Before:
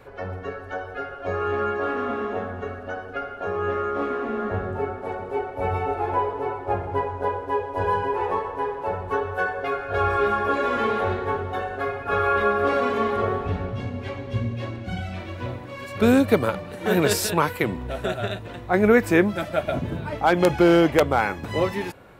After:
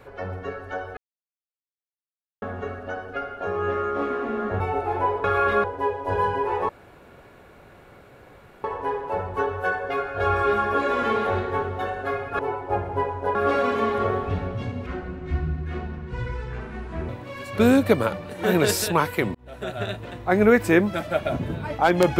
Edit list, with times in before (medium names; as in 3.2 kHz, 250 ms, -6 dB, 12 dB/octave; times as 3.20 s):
0.97–2.42 s: mute
4.60–5.73 s: delete
6.37–7.33 s: swap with 12.13–12.53 s
8.38 s: insert room tone 1.95 s
14.04–15.51 s: speed 66%
17.77–18.33 s: fade in